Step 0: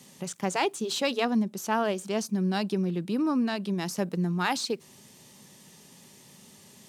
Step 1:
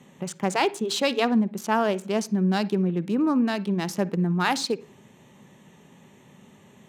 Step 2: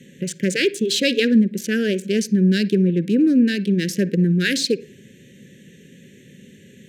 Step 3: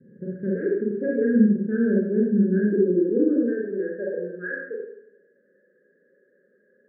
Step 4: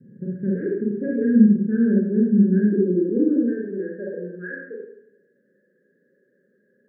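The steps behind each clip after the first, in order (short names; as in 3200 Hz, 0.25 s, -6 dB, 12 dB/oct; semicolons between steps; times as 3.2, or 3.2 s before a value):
Wiener smoothing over 9 samples; on a send at -18 dB: reverb RT60 0.50 s, pre-delay 49 ms; on the sum: gain +4 dB
Chebyshev band-stop 530–1600 Hz, order 4; gain +7 dB
rippled Chebyshev low-pass 1700 Hz, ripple 6 dB; high-pass sweep 95 Hz -> 750 Hz, 0.65–4.59; Schroeder reverb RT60 0.74 s, combs from 30 ms, DRR -4.5 dB; gain -8 dB
ten-band EQ 125 Hz +7 dB, 250 Hz +3 dB, 500 Hz -3 dB, 1000 Hz -8 dB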